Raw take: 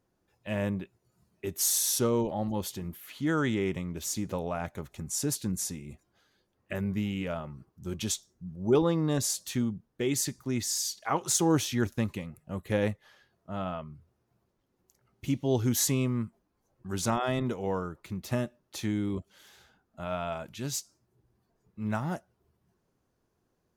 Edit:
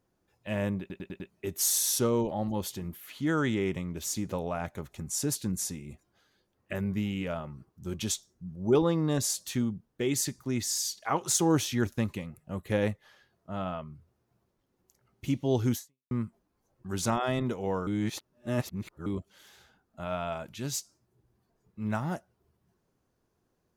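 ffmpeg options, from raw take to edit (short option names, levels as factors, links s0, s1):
-filter_complex "[0:a]asplit=9[s0][s1][s2][s3][s4][s5][s6][s7][s8];[s0]atrim=end=0.902[s9];[s1]atrim=start=0.798:end=0.902[s10];[s2]atrim=start=0.798:end=0.902[s11];[s3]atrim=start=0.798:end=0.902[s12];[s4]atrim=start=0.798:end=0.902[s13];[s5]atrim=start=1.298:end=16.11,asetpts=PTS-STARTPTS,afade=t=out:st=14.442:d=0.37:c=exp[s14];[s6]atrim=start=16.11:end=17.872,asetpts=PTS-STARTPTS,afade=t=in:d=0.004:c=hsin[s15];[s7]atrim=start=17.868:end=19.062,asetpts=PTS-STARTPTS,areverse[s16];[s8]atrim=start=19.058[s17];[s9][s10]acrossfade=d=0.004:c1=hsin:c2=hsin[s18];[s18][s11]acrossfade=d=0.004:c1=hsin:c2=hsin[s19];[s19][s12]acrossfade=d=0.004:c1=hsin:c2=hsin[s20];[s20][s13]acrossfade=d=0.004:c1=hsin:c2=hsin[s21];[s14][s15]concat=n=2:v=0:a=1[s22];[s21][s22]acrossfade=d=0.004:c1=hsin:c2=hsin[s23];[s23][s16]acrossfade=d=0.004:c1=hsin:c2=hsin[s24];[s24][s17]acrossfade=d=0.004:c1=hsin:c2=hsin"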